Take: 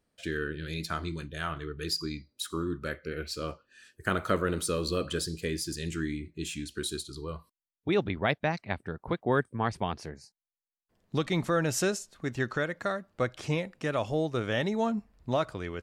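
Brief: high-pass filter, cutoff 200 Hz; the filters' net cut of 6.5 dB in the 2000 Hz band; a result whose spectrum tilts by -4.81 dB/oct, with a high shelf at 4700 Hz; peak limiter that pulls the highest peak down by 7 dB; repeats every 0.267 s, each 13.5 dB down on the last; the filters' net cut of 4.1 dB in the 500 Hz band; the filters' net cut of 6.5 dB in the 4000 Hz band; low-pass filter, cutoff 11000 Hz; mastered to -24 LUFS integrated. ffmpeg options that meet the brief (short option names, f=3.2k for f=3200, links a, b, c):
-af "highpass=200,lowpass=11k,equalizer=f=500:t=o:g=-4.5,equalizer=f=2k:t=o:g=-7,equalizer=f=4k:t=o:g=-3.5,highshelf=f=4.7k:g=-5,alimiter=limit=-22.5dB:level=0:latency=1,aecho=1:1:267|534:0.211|0.0444,volume=13.5dB"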